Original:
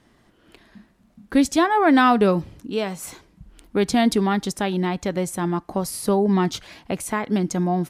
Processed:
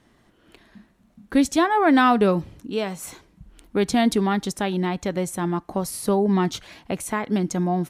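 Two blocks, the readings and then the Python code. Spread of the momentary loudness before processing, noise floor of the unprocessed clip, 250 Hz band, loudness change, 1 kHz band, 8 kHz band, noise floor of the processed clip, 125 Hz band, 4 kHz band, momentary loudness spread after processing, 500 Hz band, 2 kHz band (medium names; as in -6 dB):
13 LU, -59 dBFS, -1.0 dB, -1.0 dB, -1.0 dB, -1.0 dB, -60 dBFS, -1.0 dB, -1.5 dB, 13 LU, -1.0 dB, -1.0 dB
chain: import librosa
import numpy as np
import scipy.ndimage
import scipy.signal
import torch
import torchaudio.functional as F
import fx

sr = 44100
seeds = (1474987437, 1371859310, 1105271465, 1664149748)

y = fx.notch(x, sr, hz=4900.0, q=17.0)
y = y * librosa.db_to_amplitude(-1.0)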